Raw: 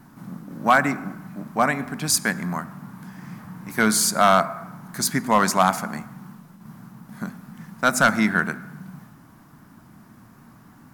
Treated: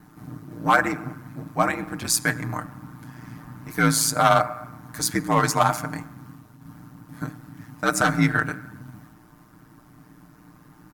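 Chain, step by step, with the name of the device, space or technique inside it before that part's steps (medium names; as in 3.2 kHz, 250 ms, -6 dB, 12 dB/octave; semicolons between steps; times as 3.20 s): ring-modulated robot voice (ring modulator 58 Hz; comb 6.6 ms)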